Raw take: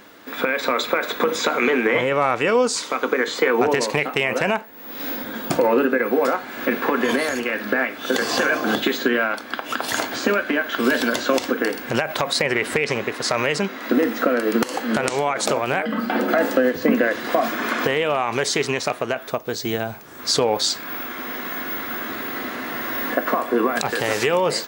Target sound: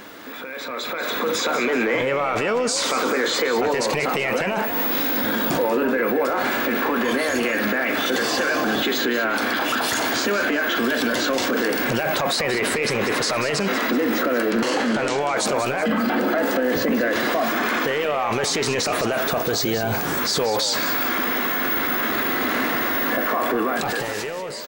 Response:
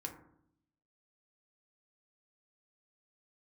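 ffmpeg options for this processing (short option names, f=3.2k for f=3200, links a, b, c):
-filter_complex "[0:a]asettb=1/sr,asplit=3[a][b][c];[a]atrim=end=14.504[d];[b]atrim=start=14.5:end=15.21,asetpts=PTS-STARTPTS,afade=t=in:d=0.004:c=qsin,afade=t=out:st=0.706:d=0.004:c=qsin,lowpass=7.1k[e];[c]atrim=start=15.206[f];[d][e]acrossfade=d=0.004:c1=hsin:c2=qsin[g];[g][f]acrossfade=d=0.004:c1=qsin:c2=hsin,acontrast=51,alimiter=level_in=3dB:limit=-24dB:level=0:latency=1:release=17,volume=-3dB,dynaudnorm=f=220:g=9:m=12.5dB,asplit=5[h][i][j][k][l];[i]adelay=189,afreqshift=53,volume=-10.5dB[m];[j]adelay=378,afreqshift=106,volume=-18.2dB[n];[k]adelay=567,afreqshift=159,volume=-26dB[o];[l]adelay=756,afreqshift=212,volume=-33.7dB[p];[h][m][n][o][p]amix=inputs=5:normalize=0"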